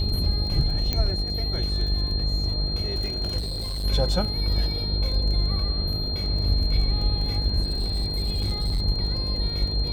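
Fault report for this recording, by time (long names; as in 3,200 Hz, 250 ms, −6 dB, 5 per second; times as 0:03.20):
mains buzz 50 Hz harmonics 16 −28 dBFS
surface crackle 24 per second −31 dBFS
whistle 4,200 Hz −29 dBFS
0:00.93: click −11 dBFS
0:03.38–0:03.85: clipping −26.5 dBFS
0:07.62–0:08.82: clipping −21 dBFS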